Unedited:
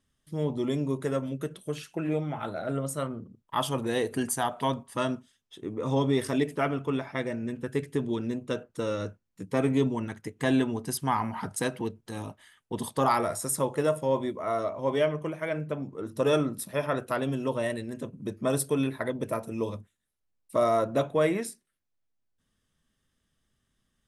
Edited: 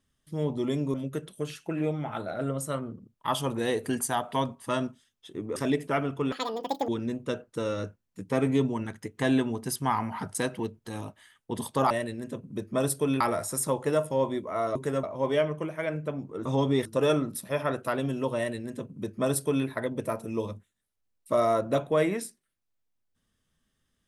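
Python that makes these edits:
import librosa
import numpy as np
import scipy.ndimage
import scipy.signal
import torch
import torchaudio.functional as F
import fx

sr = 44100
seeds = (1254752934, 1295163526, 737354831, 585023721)

y = fx.edit(x, sr, fx.move(start_s=0.94, length_s=0.28, to_s=14.67),
    fx.move(start_s=5.84, length_s=0.4, to_s=16.09),
    fx.speed_span(start_s=7.0, length_s=1.1, speed=1.95),
    fx.duplicate(start_s=17.6, length_s=1.3, to_s=13.12), tone=tone)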